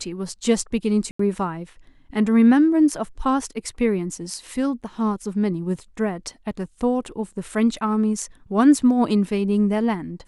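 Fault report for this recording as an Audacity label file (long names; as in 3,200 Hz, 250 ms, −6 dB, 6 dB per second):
1.110000	1.190000	drop-out 84 ms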